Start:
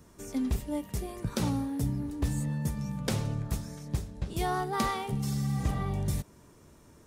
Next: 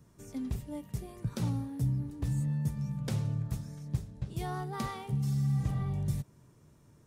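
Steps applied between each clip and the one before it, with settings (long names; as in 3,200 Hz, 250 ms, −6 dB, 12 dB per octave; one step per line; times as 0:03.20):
parametric band 130 Hz +11.5 dB 0.87 octaves
level −8.5 dB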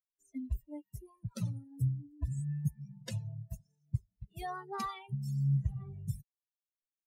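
spectral dynamics exaggerated over time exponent 3
flanger whose copies keep moving one way falling 1 Hz
level +7 dB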